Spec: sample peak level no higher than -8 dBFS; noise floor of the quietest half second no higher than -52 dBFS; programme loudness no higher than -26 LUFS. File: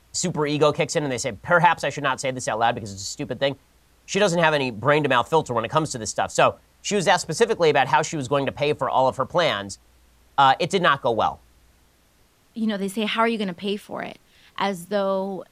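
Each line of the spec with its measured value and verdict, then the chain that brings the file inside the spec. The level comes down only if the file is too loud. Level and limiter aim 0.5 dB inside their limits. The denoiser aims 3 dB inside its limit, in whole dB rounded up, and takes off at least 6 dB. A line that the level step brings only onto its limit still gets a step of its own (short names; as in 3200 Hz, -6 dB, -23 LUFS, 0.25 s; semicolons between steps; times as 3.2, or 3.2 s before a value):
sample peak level -2.0 dBFS: fail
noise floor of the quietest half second -60 dBFS: OK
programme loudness -22.0 LUFS: fail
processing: gain -4.5 dB; limiter -8.5 dBFS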